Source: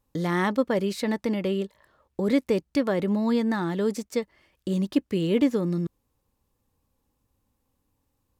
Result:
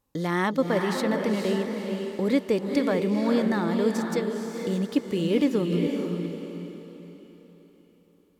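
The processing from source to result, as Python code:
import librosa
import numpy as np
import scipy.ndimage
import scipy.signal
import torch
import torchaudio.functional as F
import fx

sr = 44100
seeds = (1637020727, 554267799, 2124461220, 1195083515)

p1 = fx.low_shelf(x, sr, hz=92.0, db=-8.5)
y = p1 + fx.echo_diffused(p1, sr, ms=471, feedback_pct=41, wet_db=-4.0, dry=0)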